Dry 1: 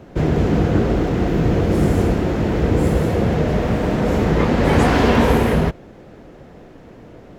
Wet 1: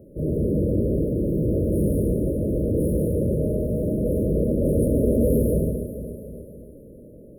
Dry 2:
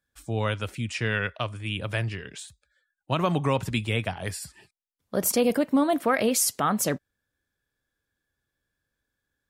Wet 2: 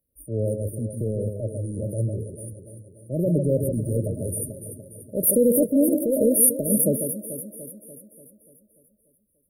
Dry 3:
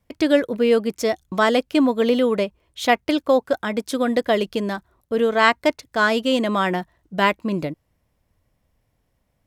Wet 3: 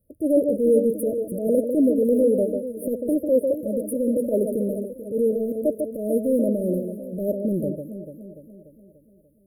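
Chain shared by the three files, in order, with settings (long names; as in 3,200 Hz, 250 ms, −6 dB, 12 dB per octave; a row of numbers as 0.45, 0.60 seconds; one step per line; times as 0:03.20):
tilt shelving filter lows −4 dB, about 930 Hz
on a send: delay that swaps between a low-pass and a high-pass 146 ms, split 1,500 Hz, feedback 74%, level −8 dB
on the sum: transient designer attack −8 dB, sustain +1 dB
linear-phase brick-wall band-stop 640–9,000 Hz
loudness normalisation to −23 LKFS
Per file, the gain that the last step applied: −1.5, +8.0, +3.0 decibels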